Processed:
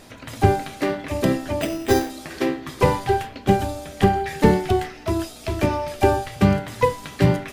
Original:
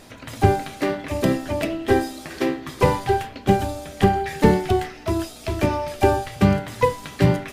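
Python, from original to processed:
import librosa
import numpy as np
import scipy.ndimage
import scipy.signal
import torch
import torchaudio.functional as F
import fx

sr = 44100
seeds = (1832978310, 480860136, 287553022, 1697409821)

y = fx.resample_bad(x, sr, factor=8, down='none', up='hold', at=(1.61, 2.1))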